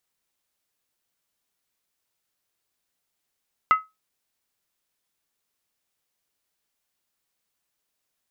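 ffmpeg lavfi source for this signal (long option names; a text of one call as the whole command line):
ffmpeg -f lavfi -i "aevalsrc='0.316*pow(10,-3*t/0.21)*sin(2*PI*1280*t)+0.0841*pow(10,-3*t/0.166)*sin(2*PI*2040.3*t)+0.0224*pow(10,-3*t/0.144)*sin(2*PI*2734.1*t)+0.00596*pow(10,-3*t/0.139)*sin(2*PI*2938.9*t)+0.00158*pow(10,-3*t/0.129)*sin(2*PI*3395.8*t)':duration=0.63:sample_rate=44100" out.wav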